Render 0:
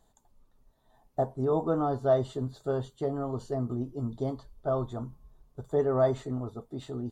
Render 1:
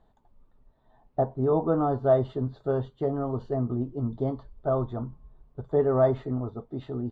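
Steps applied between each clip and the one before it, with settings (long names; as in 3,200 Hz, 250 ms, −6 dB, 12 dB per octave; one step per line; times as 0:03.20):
high-frequency loss of the air 350 metres
level +4 dB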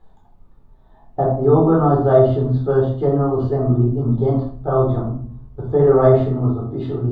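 convolution reverb RT60 0.50 s, pre-delay 11 ms, DRR −2 dB
level +3.5 dB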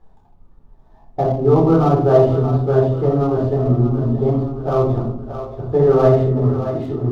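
running median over 15 samples
echo with a time of its own for lows and highs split 460 Hz, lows 146 ms, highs 624 ms, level −9.5 dB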